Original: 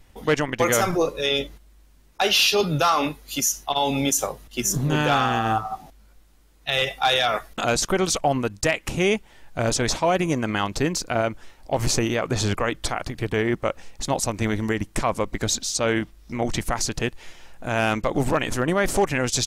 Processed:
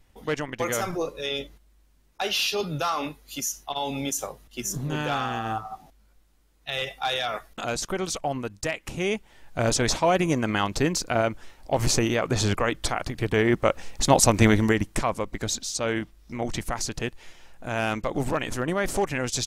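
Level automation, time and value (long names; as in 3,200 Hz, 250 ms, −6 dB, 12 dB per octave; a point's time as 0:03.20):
0:08.94 −7 dB
0:09.63 −0.5 dB
0:13.15 −0.5 dB
0:14.38 +7.5 dB
0:15.21 −4.5 dB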